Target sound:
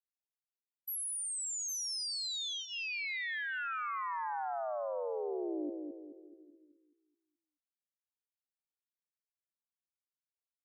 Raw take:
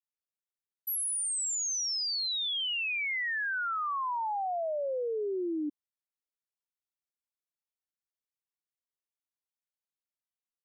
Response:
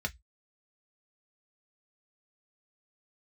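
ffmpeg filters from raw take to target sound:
-filter_complex "[0:a]bandreject=frequency=3000:width=9,asplit=2[link_01][link_02];[link_02]aecho=0:1:809:0.251[link_03];[link_01][link_03]amix=inputs=2:normalize=0,agate=range=-33dB:threshold=-37dB:ratio=3:detection=peak,asplit=2[link_04][link_05];[link_05]adelay=214,lowpass=frequency=1300:poles=1,volume=-4.5dB,asplit=2[link_06][link_07];[link_07]adelay=214,lowpass=frequency=1300:poles=1,volume=0.43,asplit=2[link_08][link_09];[link_09]adelay=214,lowpass=frequency=1300:poles=1,volume=0.43,asplit=2[link_10][link_11];[link_11]adelay=214,lowpass=frequency=1300:poles=1,volume=0.43,asplit=2[link_12][link_13];[link_13]adelay=214,lowpass=frequency=1300:poles=1,volume=0.43[link_14];[link_06][link_08][link_10][link_12][link_14]amix=inputs=5:normalize=0[link_15];[link_04][link_15]amix=inputs=2:normalize=0,volume=-6dB"

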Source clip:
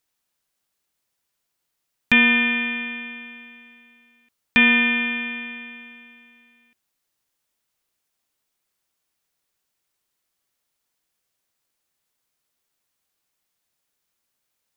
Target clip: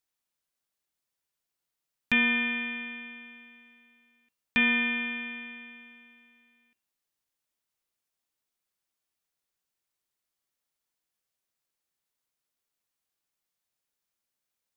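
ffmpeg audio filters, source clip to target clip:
ffmpeg -i in.wav -af "bandreject=frequency=97.95:width_type=h:width=4,bandreject=frequency=195.9:width_type=h:width=4,bandreject=frequency=293.85:width_type=h:width=4,bandreject=frequency=391.8:width_type=h:width=4,bandreject=frequency=489.75:width_type=h:width=4,bandreject=frequency=587.7:width_type=h:width=4,bandreject=frequency=685.65:width_type=h:width=4,bandreject=frequency=783.6:width_type=h:width=4,bandreject=frequency=881.55:width_type=h:width=4,bandreject=frequency=979.5:width_type=h:width=4,bandreject=frequency=1077.45:width_type=h:width=4,bandreject=frequency=1175.4:width_type=h:width=4,bandreject=frequency=1273.35:width_type=h:width=4,bandreject=frequency=1371.3:width_type=h:width=4,bandreject=frequency=1469.25:width_type=h:width=4,bandreject=frequency=1567.2:width_type=h:width=4,bandreject=frequency=1665.15:width_type=h:width=4,bandreject=frequency=1763.1:width_type=h:width=4,bandreject=frequency=1861.05:width_type=h:width=4,bandreject=frequency=1959:width_type=h:width=4,bandreject=frequency=2056.95:width_type=h:width=4,bandreject=frequency=2154.9:width_type=h:width=4,bandreject=frequency=2252.85:width_type=h:width=4,bandreject=frequency=2350.8:width_type=h:width=4,bandreject=frequency=2448.75:width_type=h:width=4,bandreject=frequency=2546.7:width_type=h:width=4,bandreject=frequency=2644.65:width_type=h:width=4,bandreject=frequency=2742.6:width_type=h:width=4,bandreject=frequency=2840.55:width_type=h:width=4,bandreject=frequency=2938.5:width_type=h:width=4,bandreject=frequency=3036.45:width_type=h:width=4,bandreject=frequency=3134.4:width_type=h:width=4,bandreject=frequency=3232.35:width_type=h:width=4,bandreject=frequency=3330.3:width_type=h:width=4,bandreject=frequency=3428.25:width_type=h:width=4,volume=-8.5dB" out.wav

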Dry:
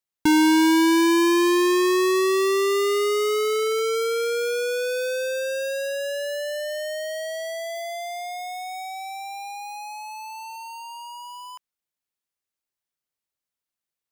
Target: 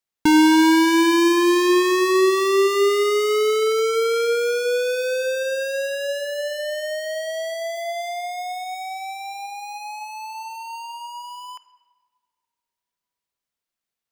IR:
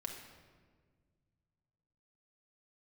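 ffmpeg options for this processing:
-filter_complex "[0:a]asplit=2[link_01][link_02];[1:a]atrim=start_sample=2205,lowpass=8400[link_03];[link_02][link_03]afir=irnorm=-1:irlink=0,volume=-4.5dB[link_04];[link_01][link_04]amix=inputs=2:normalize=0"

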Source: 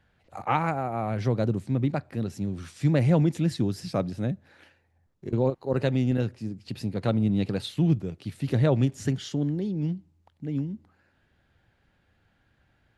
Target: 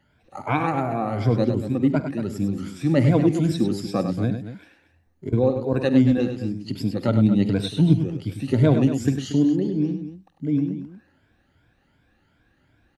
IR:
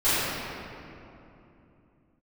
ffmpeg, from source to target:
-filter_complex "[0:a]afftfilt=real='re*pow(10,14/40*sin(2*PI*(1.7*log(max(b,1)*sr/1024/100)/log(2)-(2.7)*(pts-256)/sr)))':imag='im*pow(10,14/40*sin(2*PI*(1.7*log(max(b,1)*sr/1024/100)/log(2)-(2.7)*(pts-256)/sr)))':win_size=1024:overlap=0.75,equalizer=frequency=280:width_type=o:width=0.68:gain=6.5,asplit=2[link_01][link_02];[link_02]aecho=0:1:50|72|100|232:0.126|0.119|0.398|0.237[link_03];[link_01][link_03]amix=inputs=2:normalize=0"

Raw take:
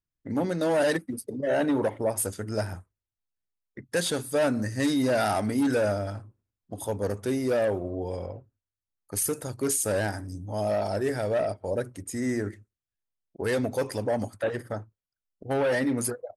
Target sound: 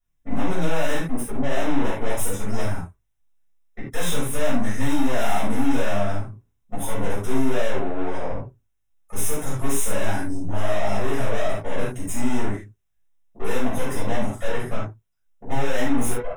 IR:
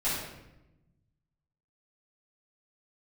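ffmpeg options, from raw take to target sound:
-filter_complex "[0:a]aeval=exprs='(tanh(70.8*val(0)+0.65)-tanh(0.65))/70.8':channel_layout=same,asuperstop=centerf=4500:order=4:qfactor=3.4[link_01];[1:a]atrim=start_sample=2205,atrim=end_sample=4410[link_02];[link_01][link_02]afir=irnorm=-1:irlink=0,volume=5.5dB"

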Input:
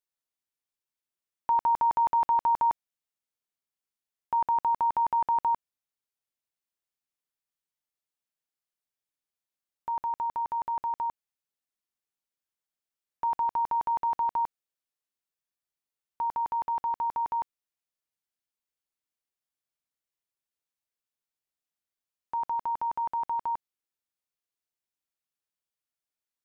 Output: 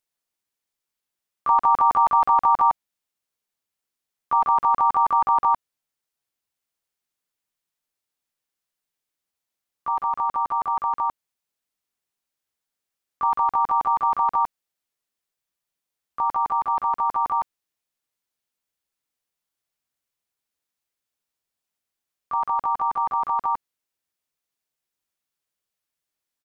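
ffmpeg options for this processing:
ffmpeg -i in.wav -filter_complex "[0:a]asplit=3[link_01][link_02][link_03];[link_02]asetrate=37084,aresample=44100,atempo=1.18921,volume=-10dB[link_04];[link_03]asetrate=55563,aresample=44100,atempo=0.793701,volume=-3dB[link_05];[link_01][link_04][link_05]amix=inputs=3:normalize=0,volume=4.5dB" out.wav

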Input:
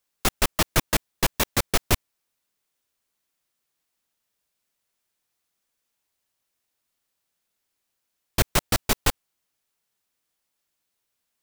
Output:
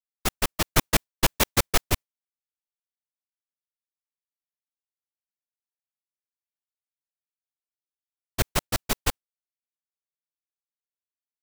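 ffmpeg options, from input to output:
ffmpeg -i in.wav -filter_complex "[0:a]agate=range=-33dB:threshold=-20dB:ratio=3:detection=peak,asettb=1/sr,asplit=3[link_01][link_02][link_03];[link_01]atrim=end=0.754[link_04];[link_02]atrim=start=0.75:end=1.81,asetpts=PTS-STARTPTS,afade=type=in:duration=0.004:curve=qsin,afade=type=out:start_time=1.056:duration=0.004:curve=qsin,aeval=exprs='0.562*(cos(1*acos(clip(val(0)/0.562,-1,1)))-cos(1*PI/2))+0.141*(cos(5*acos(clip(val(0)/0.562,-1,1)))-cos(5*PI/2))':channel_layout=same[link_05];[link_03]atrim=start=1.806[link_06];[link_04][link_05]acrossfade=duration=0.004:curve1=hsin:curve2=qsin[link_07];[link_07][link_06]acrossfade=duration=0.004:curve1=qsin:curve2=hsin,volume=-2.5dB" out.wav

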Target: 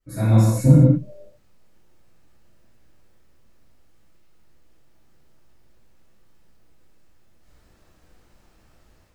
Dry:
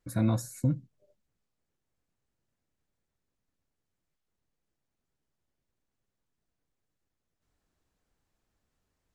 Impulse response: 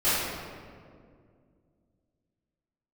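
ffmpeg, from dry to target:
-filter_complex "[0:a]dynaudnorm=framelen=430:gausssize=3:maxgain=14dB[link_01];[1:a]atrim=start_sample=2205,afade=type=out:start_time=0.3:duration=0.01,atrim=end_sample=13671[link_02];[link_01][link_02]afir=irnorm=-1:irlink=0,volume=-7dB"

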